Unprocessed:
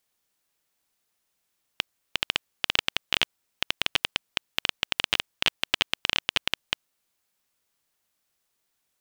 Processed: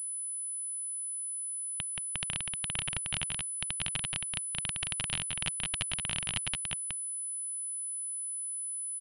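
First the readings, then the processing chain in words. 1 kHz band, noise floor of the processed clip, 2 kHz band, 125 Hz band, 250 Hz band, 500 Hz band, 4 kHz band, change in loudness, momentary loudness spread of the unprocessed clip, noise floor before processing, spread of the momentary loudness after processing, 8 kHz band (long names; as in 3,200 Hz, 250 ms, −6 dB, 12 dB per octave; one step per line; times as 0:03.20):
−9.5 dB, −37 dBFS, −10.0 dB, +4.5 dB, −3.5 dB, −11.0 dB, −10.5 dB, −5.0 dB, 8 LU, −77 dBFS, 2 LU, +13.0 dB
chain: low shelf with overshoot 220 Hz +11.5 dB, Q 1.5
brickwall limiter −10.5 dBFS, peak gain reduction 8 dB
single-tap delay 177 ms −4 dB
switching amplifier with a slow clock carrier 10,000 Hz
level −3 dB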